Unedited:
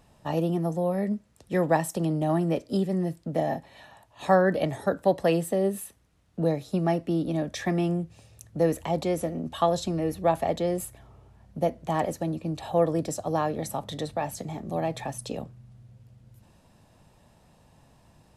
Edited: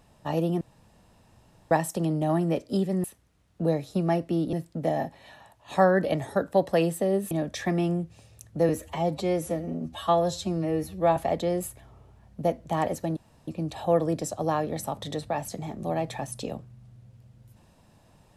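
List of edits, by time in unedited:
0.61–1.71 room tone
5.82–7.31 move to 3.04
8.69–10.34 stretch 1.5×
12.34 insert room tone 0.31 s

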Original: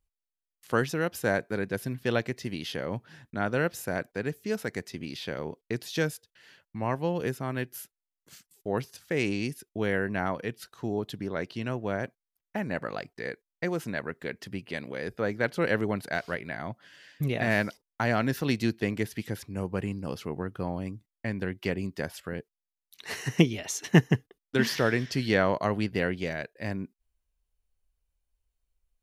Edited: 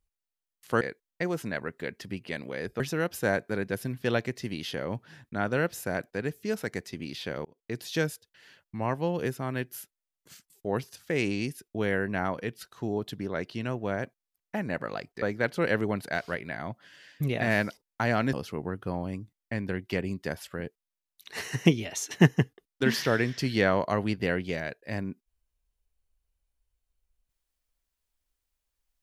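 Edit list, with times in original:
5.46–5.85 fade in
13.23–15.22 move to 0.81
18.33–20.06 cut

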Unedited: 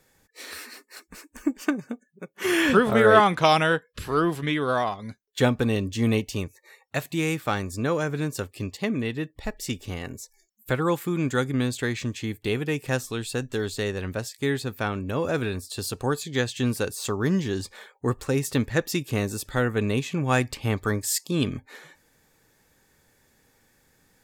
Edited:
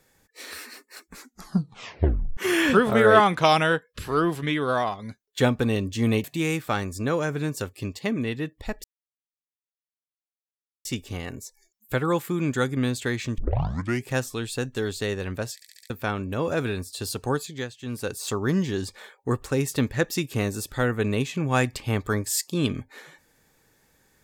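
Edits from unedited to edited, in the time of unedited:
1.09 tape stop 1.28 s
6.24–7.02 cut
9.62 insert silence 2.01 s
12.15 tape start 0.70 s
14.32 stutter in place 0.07 s, 5 plays
16.1–16.98 dip -16.5 dB, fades 0.44 s

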